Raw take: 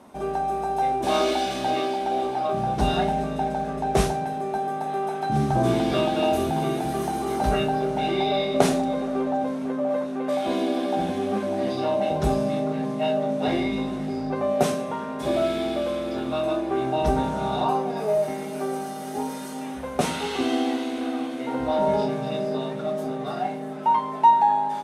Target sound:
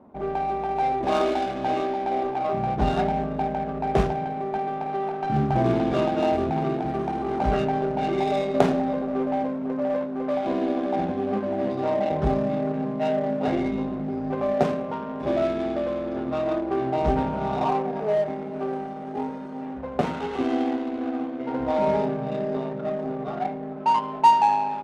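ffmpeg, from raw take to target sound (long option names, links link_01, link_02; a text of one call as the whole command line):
ffmpeg -i in.wav -af "acrusher=bits=5:mode=log:mix=0:aa=0.000001,adynamicsmooth=sensitivity=1.5:basefreq=920" out.wav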